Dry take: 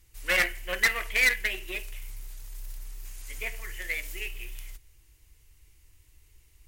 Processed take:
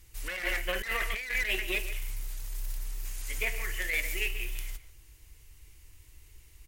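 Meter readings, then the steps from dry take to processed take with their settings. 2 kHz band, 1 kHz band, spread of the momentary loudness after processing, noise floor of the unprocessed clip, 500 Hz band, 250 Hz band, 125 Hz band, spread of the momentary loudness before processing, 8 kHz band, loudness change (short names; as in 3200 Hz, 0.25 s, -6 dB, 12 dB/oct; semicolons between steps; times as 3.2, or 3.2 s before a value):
-4.5 dB, -2.5 dB, 11 LU, -61 dBFS, -1.5 dB, +0.5 dB, +3.5 dB, 21 LU, -2.0 dB, -5.5 dB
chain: speakerphone echo 0.14 s, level -12 dB; negative-ratio compressor -32 dBFS, ratio -1; gain +1.5 dB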